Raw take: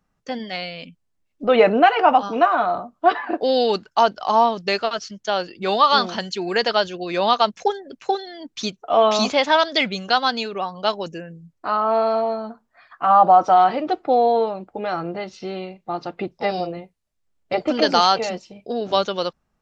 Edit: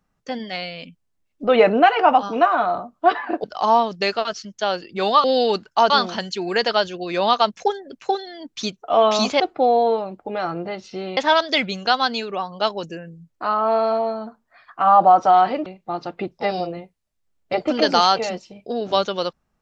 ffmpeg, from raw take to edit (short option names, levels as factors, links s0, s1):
-filter_complex "[0:a]asplit=7[s0][s1][s2][s3][s4][s5][s6];[s0]atrim=end=3.442[s7];[s1]atrim=start=4.098:end=5.902[s8];[s2]atrim=start=3.438:end=4.102[s9];[s3]atrim=start=5.898:end=9.402[s10];[s4]atrim=start=13.888:end=15.662[s11];[s5]atrim=start=9.398:end=13.892[s12];[s6]atrim=start=15.658[s13];[s7][s8]acrossfade=d=0.004:c1=hsin:c2=hsin[s14];[s14][s9]acrossfade=d=0.004:c1=hsin:c2=hsin[s15];[s15][s10]acrossfade=d=0.004:c1=hsin:c2=hsin[s16];[s16][s11]acrossfade=d=0.004:c1=hsin:c2=hsin[s17];[s17][s12]acrossfade=d=0.004:c1=hsin:c2=hsin[s18];[s18][s13]acrossfade=d=0.004:c1=hsin:c2=hsin"